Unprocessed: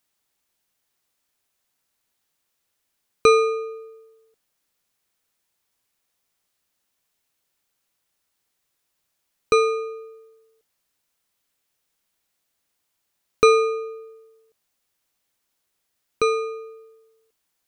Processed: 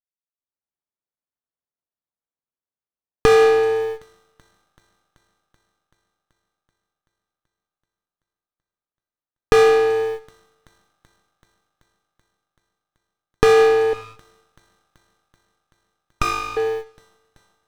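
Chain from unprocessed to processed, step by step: gate -45 dBFS, range -28 dB; peak limiter -13 dBFS, peak gain reduction 10.5 dB; compression 3:1, threshold -35 dBFS, peak gain reduction 13 dB; waveshaping leveller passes 2; level rider gain up to 14 dB; Chebyshev shaper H 6 -32 dB, 7 -26 dB, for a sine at -2.5 dBFS; 13.93–16.57 s: brick-wall FIR band-pass 940–7300 Hz; feedback echo behind a high-pass 382 ms, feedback 72%, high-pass 4.6 kHz, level -18 dB; simulated room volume 2600 m³, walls furnished, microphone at 0.31 m; sliding maximum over 17 samples; trim +1 dB

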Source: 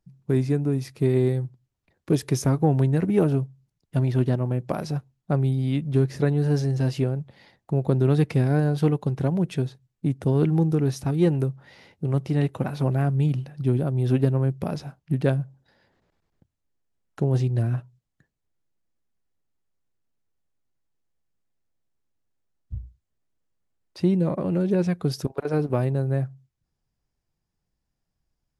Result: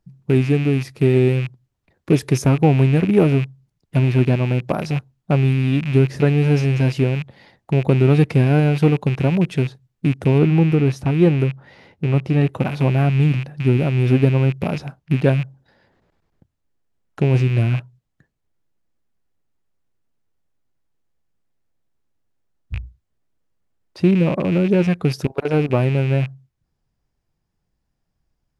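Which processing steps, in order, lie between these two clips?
rattle on loud lows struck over -30 dBFS, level -26 dBFS; treble shelf 3.9 kHz -5 dB, from 10.38 s -12 dB, from 12.49 s -6.5 dB; trim +6 dB

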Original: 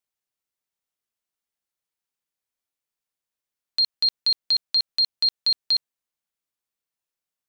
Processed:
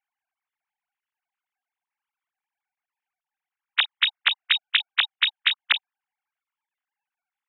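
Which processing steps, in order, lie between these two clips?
formants replaced by sine waves; three-band isolator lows -12 dB, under 570 Hz, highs -22 dB, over 2.9 kHz; trim +6 dB

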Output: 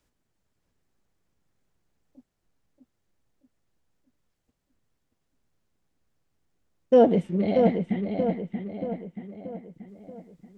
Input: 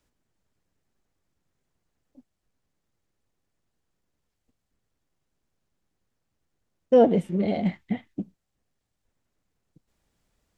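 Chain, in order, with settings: 7.15–8.20 s: distance through air 54 m; filtered feedback delay 631 ms, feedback 50%, low-pass 3.5 kHz, level -5 dB

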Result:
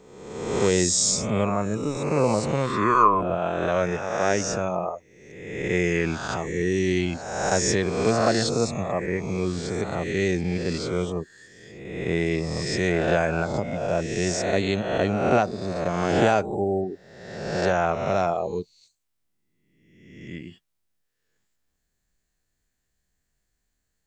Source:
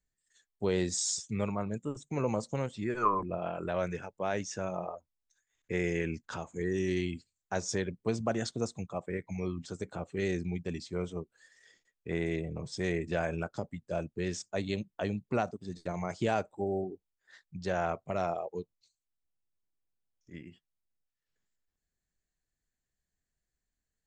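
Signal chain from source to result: reverse spectral sustain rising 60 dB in 1.16 s; trim +7.5 dB

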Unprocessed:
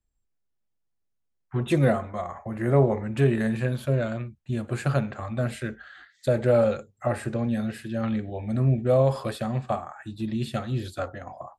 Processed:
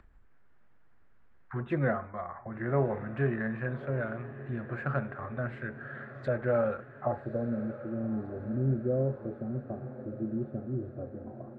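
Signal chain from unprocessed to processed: low-pass sweep 1.6 kHz -> 370 Hz, 6.68–7.72 s; upward compressor, threshold -28 dBFS; echo that smears into a reverb 1157 ms, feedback 58%, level -14 dB; trim -8.5 dB

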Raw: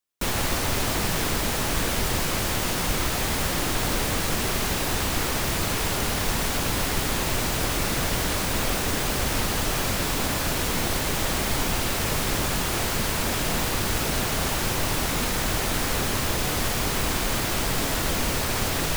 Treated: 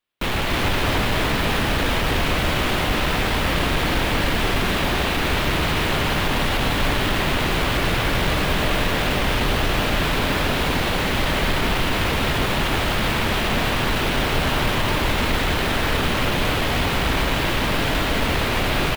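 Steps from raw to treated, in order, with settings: resonant high shelf 4.5 kHz -10.5 dB, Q 1.5; saturation -23.5 dBFS, distortion -13 dB; delay 299 ms -4 dB; on a send at -8 dB: reverberation RT60 0.65 s, pre-delay 97 ms; on the sum: trim +6 dB

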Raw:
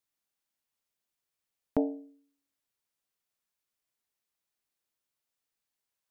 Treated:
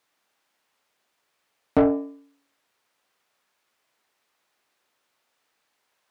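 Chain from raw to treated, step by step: overdrive pedal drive 25 dB, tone 1.4 kHz, clips at -13.5 dBFS; de-hum 167.9 Hz, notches 21; trim +5 dB

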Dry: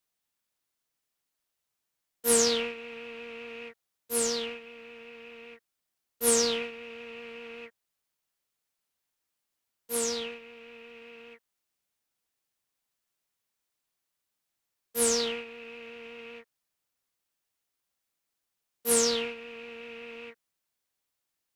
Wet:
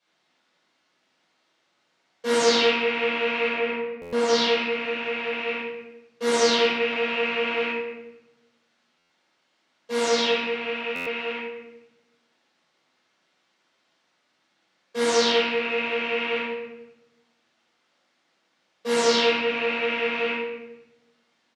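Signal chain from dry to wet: 3.49–4.28 s: treble shelf 2.7 kHz -11.5 dB; compression 2:1, threshold -40 dBFS, peak gain reduction 11.5 dB; saturation -27 dBFS, distortion -20 dB; band-pass 220–5100 Hz; distance through air 62 m; early reflections 59 ms -9 dB, 78 ms -17.5 dB; simulated room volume 380 m³, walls mixed, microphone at 5.5 m; buffer glitch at 4.01/8.98/10.95 s, samples 512, times 9; trim +8 dB

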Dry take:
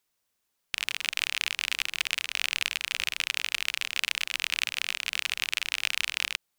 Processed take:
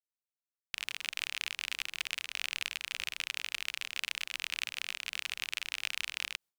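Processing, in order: gate with hold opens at -55 dBFS; trim -7.5 dB

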